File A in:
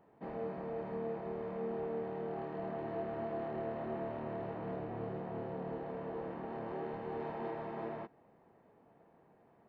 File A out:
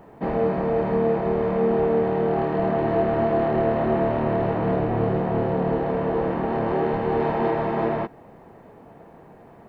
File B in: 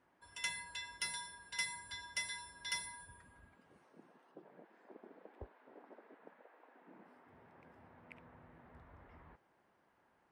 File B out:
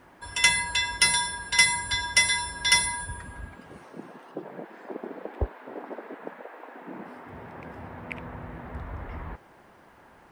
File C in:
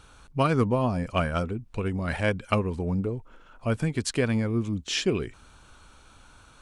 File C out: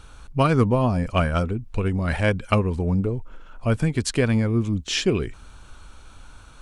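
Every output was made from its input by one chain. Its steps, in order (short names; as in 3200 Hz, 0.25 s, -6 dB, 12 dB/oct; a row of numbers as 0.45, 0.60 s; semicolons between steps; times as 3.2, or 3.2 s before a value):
low shelf 66 Hz +10.5 dB; match loudness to -23 LUFS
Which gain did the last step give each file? +17.5, +19.5, +3.5 dB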